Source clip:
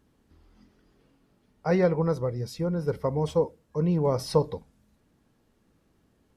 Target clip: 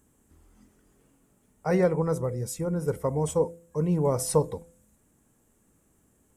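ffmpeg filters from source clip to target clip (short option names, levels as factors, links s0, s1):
-af "highshelf=f=6000:t=q:w=3:g=9.5,bandreject=f=169.1:t=h:w=4,bandreject=f=338.2:t=h:w=4,bandreject=f=507.3:t=h:w=4,bandreject=f=676.4:t=h:w=4"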